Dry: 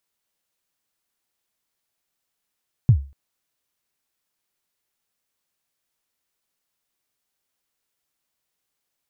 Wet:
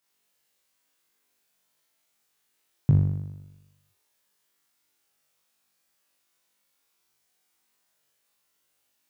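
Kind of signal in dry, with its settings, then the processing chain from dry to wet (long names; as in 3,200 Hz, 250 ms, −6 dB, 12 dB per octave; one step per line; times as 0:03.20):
synth kick length 0.24 s, from 140 Hz, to 69 Hz, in 81 ms, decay 0.33 s, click off, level −6 dB
high-pass filter 140 Hz 6 dB per octave
flutter between parallel walls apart 3.5 metres, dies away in 1 s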